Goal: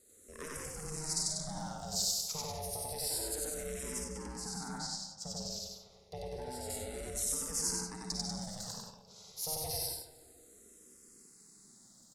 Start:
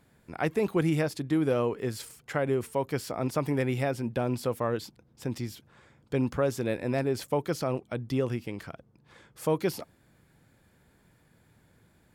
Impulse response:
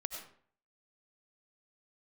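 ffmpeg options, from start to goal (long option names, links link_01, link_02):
-filter_complex "[0:a]bass=frequency=250:gain=6,treble=frequency=4000:gain=9,acompressor=threshold=-28dB:ratio=6,aecho=1:1:93.29|192.4:1|0.562[link_01];[1:a]atrim=start_sample=2205,asetrate=79380,aresample=44100[link_02];[link_01][link_02]afir=irnorm=-1:irlink=0,asoftclip=type=hard:threshold=-30dB,asettb=1/sr,asplit=3[link_03][link_04][link_05];[link_03]atrim=end=4.044[link_06];[link_04]atrim=start=4.04:end=6.7,asetpts=PTS-STARTPTS,afade=type=in:duration=0.004:curve=qsin,afade=type=out:start_time=2.656:duration=0.004:curve=qsin,aemphasis=mode=reproduction:type=50kf[link_07];[link_05]atrim=start=6.696[link_08];[link_06][link_07]acrossfade=duration=0.004:curve1=hsin:curve2=qsin[link_09];[link_09][link_08]acrossfade=duration=0.004:curve1=qsin:curve2=hsin,asplit=2[link_10][link_11];[link_11]adelay=306,lowpass=frequency=1900:poles=1,volume=-17dB,asplit=2[link_12][link_13];[link_13]adelay=306,lowpass=frequency=1900:poles=1,volume=0.51,asplit=2[link_14][link_15];[link_15]adelay=306,lowpass=frequency=1900:poles=1,volume=0.51,asplit=2[link_16][link_17];[link_17]adelay=306,lowpass=frequency=1900:poles=1,volume=0.51[link_18];[link_10][link_12][link_14][link_16][link_18]amix=inputs=5:normalize=0,aeval=exprs='val(0)*sin(2*PI*310*n/s)':channel_layout=same,aexciter=amount=5.1:drive=9.4:freq=4300,lowpass=7400,asplit=2[link_19][link_20];[link_20]afreqshift=-0.29[link_21];[link_19][link_21]amix=inputs=2:normalize=1,volume=-1dB"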